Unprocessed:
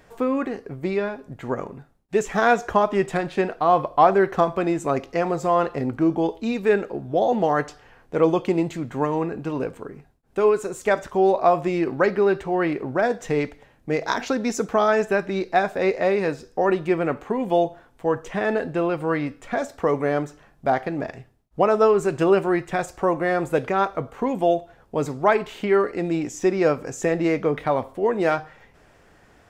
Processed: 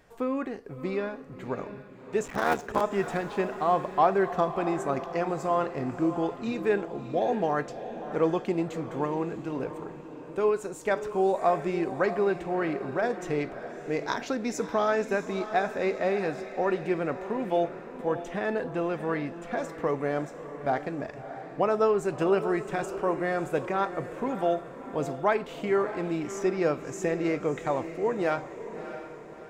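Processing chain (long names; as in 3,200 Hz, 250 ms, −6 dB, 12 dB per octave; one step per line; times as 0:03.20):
0:02.23–0:02.81: sub-harmonics by changed cycles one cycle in 3, muted
feedback delay with all-pass diffusion 640 ms, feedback 46%, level −11 dB
level −6.5 dB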